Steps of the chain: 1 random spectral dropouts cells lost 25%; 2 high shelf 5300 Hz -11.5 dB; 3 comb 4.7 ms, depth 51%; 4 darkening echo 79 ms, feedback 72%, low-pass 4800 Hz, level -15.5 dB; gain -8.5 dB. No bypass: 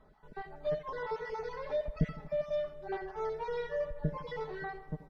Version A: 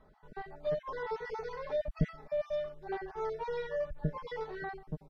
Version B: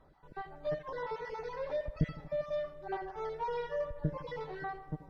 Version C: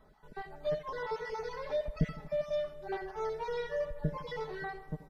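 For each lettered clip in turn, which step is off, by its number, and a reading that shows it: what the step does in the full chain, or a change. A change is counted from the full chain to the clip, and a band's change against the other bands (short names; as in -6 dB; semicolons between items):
4, echo-to-direct -13.0 dB to none; 3, 1 kHz band +2.0 dB; 2, 4 kHz band +3.5 dB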